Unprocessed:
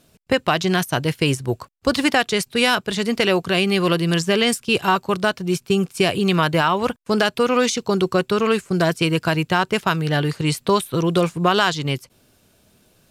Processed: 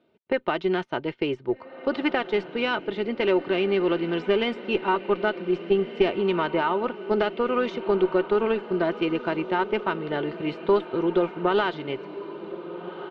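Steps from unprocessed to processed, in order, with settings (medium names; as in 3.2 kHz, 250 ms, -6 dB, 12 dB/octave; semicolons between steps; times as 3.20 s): cabinet simulation 230–2600 Hz, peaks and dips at 270 Hz -7 dB, 420 Hz +7 dB, 600 Hz -6 dB, 1.1 kHz -6 dB, 1.7 kHz -9 dB, 2.5 kHz -6 dB; on a send: echo that smears into a reverb 1588 ms, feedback 41%, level -12.5 dB; on the sum: Chebyshev shaper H 2 -12 dB, 4 -29 dB, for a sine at -3 dBFS; comb 3.3 ms, depth 48%; trim -3.5 dB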